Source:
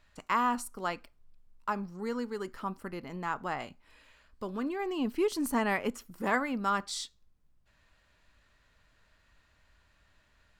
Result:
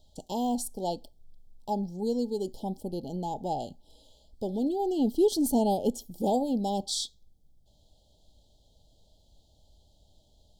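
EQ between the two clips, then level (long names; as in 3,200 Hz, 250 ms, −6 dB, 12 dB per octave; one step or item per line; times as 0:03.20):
Chebyshev band-stop filter 840–3,200 Hz, order 5
+6.5 dB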